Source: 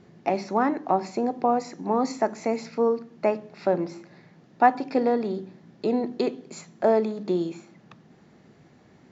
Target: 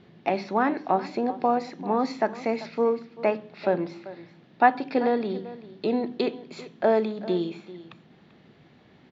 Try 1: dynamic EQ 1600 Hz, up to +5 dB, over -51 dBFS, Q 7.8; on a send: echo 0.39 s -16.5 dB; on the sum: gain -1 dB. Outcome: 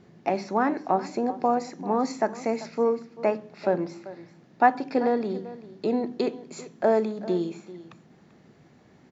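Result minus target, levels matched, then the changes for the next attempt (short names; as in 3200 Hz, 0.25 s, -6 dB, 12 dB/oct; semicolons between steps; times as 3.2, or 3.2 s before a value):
4000 Hz band -3.0 dB
add after dynamic EQ: synth low-pass 3500 Hz, resonance Q 2.3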